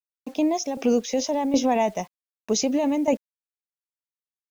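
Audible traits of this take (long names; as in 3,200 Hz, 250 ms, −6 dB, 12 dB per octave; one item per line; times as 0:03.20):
tremolo saw down 1.3 Hz, depth 70%
a quantiser's noise floor 10 bits, dither none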